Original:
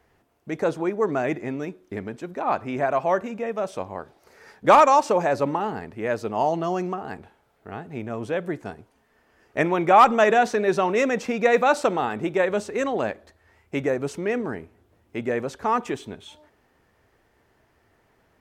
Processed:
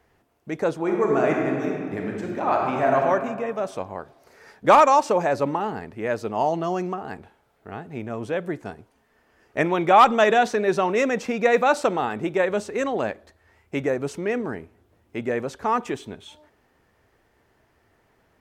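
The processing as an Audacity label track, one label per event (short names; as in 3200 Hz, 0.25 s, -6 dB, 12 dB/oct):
0.780000	2.970000	reverb throw, RT60 1.9 s, DRR -1 dB
9.690000	10.480000	bell 3500 Hz +5.5 dB 0.46 oct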